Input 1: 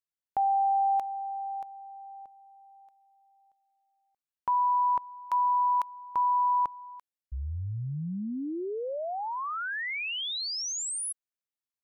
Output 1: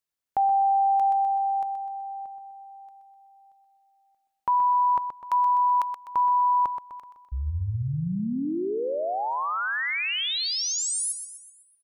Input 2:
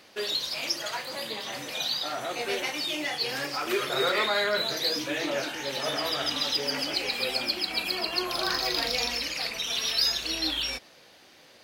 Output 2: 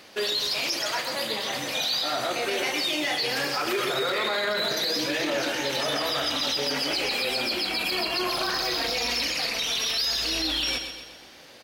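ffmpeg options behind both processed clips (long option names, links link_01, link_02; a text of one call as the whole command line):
ffmpeg -i in.wav -af "aecho=1:1:126|252|378|504|630|756:0.355|0.174|0.0852|0.0417|0.0205|0.01,alimiter=limit=-23dB:level=0:latency=1:release=18,volume=5dB" out.wav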